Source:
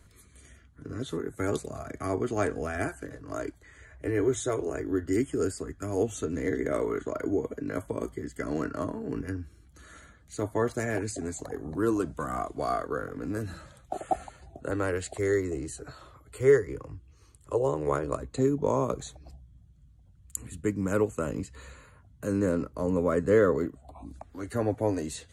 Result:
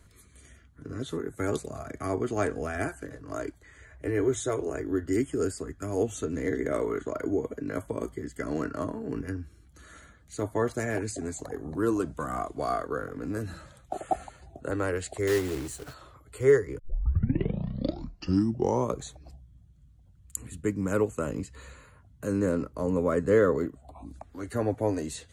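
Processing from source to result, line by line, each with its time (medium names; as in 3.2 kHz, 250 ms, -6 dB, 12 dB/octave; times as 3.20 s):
15.27–15.94 s: companded quantiser 4-bit
16.79 s: tape start 2.15 s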